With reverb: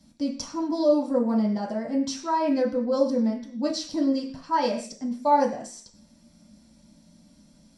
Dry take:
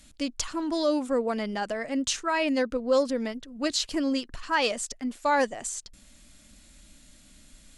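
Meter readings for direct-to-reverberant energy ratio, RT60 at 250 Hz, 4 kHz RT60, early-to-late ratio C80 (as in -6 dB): -2.5 dB, 0.55 s, n/a, 13.5 dB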